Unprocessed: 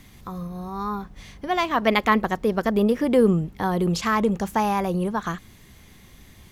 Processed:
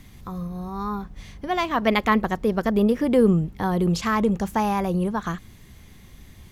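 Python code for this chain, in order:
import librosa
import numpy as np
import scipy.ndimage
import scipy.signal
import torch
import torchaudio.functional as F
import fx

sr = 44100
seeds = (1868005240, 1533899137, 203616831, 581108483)

y = fx.low_shelf(x, sr, hz=190.0, db=6.0)
y = y * 10.0 ** (-1.5 / 20.0)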